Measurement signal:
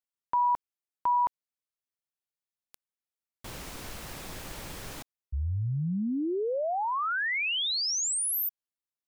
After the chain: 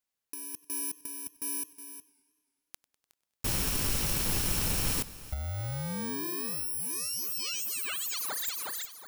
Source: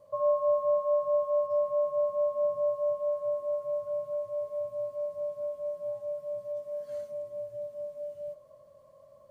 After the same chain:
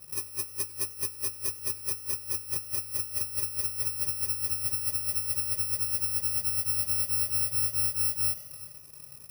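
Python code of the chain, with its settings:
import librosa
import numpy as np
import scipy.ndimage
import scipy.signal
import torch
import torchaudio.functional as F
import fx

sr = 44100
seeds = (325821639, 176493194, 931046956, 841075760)

y = fx.bit_reversed(x, sr, seeds[0], block=64)
y = fx.leveller(y, sr, passes=1)
y = fx.echo_feedback(y, sr, ms=365, feedback_pct=27, wet_db=-18.0)
y = fx.over_compress(y, sr, threshold_db=-32.0, ratio=-0.5)
y = fx.echo_warbled(y, sr, ms=98, feedback_pct=69, rate_hz=2.8, cents=129, wet_db=-22.0)
y = y * 10.0 ** (2.0 / 20.0)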